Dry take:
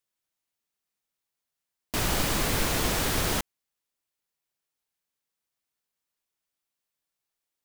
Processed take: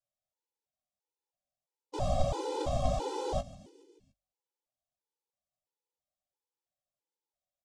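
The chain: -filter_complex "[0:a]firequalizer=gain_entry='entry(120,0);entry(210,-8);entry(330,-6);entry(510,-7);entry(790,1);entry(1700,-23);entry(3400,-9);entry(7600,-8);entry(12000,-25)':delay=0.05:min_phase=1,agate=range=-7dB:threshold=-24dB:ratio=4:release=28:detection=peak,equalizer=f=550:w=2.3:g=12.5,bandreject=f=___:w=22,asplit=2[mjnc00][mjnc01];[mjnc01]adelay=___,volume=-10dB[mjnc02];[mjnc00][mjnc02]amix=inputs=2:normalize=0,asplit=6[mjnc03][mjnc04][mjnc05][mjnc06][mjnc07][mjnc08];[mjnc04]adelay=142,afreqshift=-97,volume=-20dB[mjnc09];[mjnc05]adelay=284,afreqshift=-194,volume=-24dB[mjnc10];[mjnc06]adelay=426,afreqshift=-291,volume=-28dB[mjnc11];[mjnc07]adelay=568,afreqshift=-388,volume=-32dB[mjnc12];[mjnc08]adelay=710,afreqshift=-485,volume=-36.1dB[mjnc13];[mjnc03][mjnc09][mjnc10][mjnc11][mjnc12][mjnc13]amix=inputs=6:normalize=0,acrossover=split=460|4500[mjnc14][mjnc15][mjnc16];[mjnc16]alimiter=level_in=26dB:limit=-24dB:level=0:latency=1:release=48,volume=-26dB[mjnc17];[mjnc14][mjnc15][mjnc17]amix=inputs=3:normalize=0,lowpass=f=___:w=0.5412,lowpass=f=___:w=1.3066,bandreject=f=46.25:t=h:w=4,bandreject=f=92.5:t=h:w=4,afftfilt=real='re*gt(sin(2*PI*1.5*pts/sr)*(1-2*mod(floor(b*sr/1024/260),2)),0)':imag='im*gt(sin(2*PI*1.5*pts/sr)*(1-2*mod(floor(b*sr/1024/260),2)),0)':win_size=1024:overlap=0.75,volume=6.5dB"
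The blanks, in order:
4300, 16, 12000, 12000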